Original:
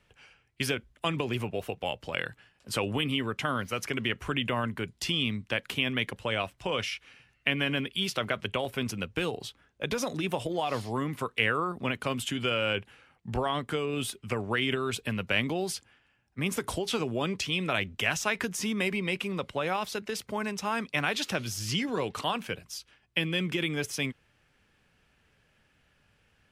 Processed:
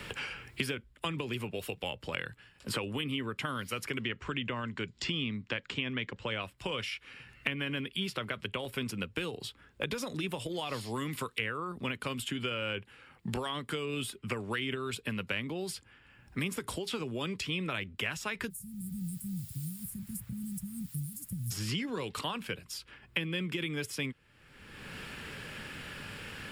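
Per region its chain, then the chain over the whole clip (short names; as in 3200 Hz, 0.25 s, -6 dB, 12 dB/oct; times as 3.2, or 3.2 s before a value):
4.03–6.42 steep low-pass 7600 Hz 48 dB/oct + upward compressor, threshold -43 dBFS
18.49–21.5 inverse Chebyshev band-stop 430–3700 Hz, stop band 60 dB + added noise blue -67 dBFS
whole clip: bell 700 Hz -7 dB 0.5 oct; notch 6100 Hz, Q 7.2; three-band squash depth 100%; gain -5 dB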